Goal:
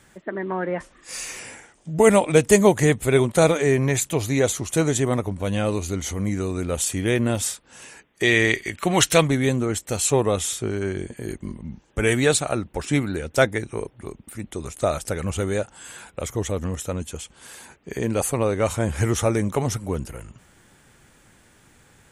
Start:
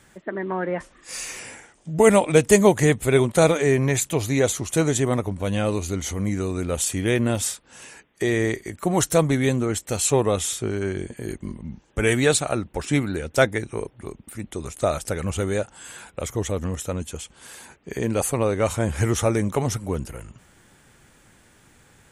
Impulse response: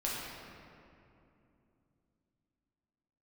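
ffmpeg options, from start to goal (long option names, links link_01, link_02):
-filter_complex "[0:a]asettb=1/sr,asplit=3[link_01][link_02][link_03];[link_01]atrim=end=8.234[link_04];[link_02]atrim=start=8.23:end=9.28,asetpts=PTS-STARTPTS,afade=type=in:duration=0.004:curve=qsin,afade=type=out:start_time=1.046:duration=0.004:curve=qsin,equalizer=frequency=2800:width=0.77:gain=13.5[link_05];[link_03]atrim=start=9.276[link_06];[link_04][link_05]acrossfade=duration=0.004:curve1=hsin:curve2=qsin[link_07];[link_07][link_06]acrossfade=duration=0.004:curve1=qsin:curve2=hsin"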